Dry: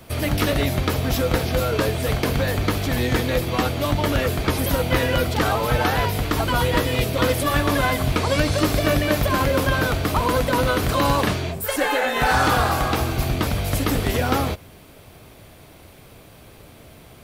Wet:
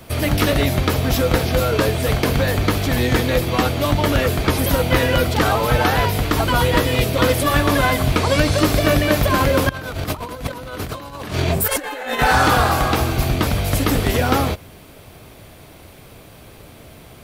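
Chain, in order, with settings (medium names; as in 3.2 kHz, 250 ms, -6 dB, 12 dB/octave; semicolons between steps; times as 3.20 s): 9.69–12.19 s: compressor with a negative ratio -27 dBFS, ratio -0.5; trim +3.5 dB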